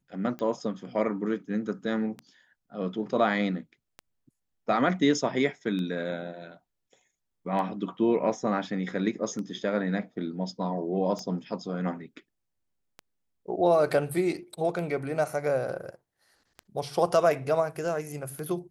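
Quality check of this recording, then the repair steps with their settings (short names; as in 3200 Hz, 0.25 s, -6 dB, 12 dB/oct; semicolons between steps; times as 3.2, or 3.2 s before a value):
tick 33 1/3 rpm -24 dBFS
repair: de-click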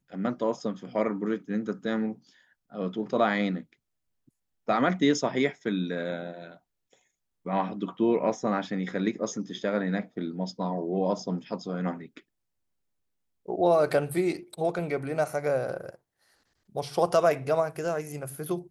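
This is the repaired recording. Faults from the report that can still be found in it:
none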